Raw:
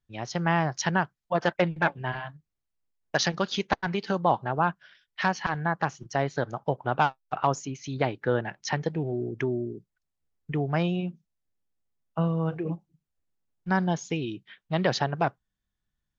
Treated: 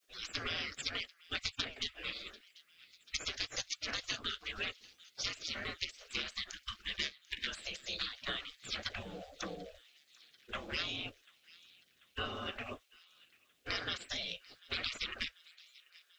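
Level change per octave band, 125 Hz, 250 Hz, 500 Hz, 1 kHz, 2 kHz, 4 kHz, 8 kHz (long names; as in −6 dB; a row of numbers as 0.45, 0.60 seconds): −23.5 dB, −21.5 dB, −20.5 dB, −21.0 dB, −9.0 dB, +1.0 dB, can't be measured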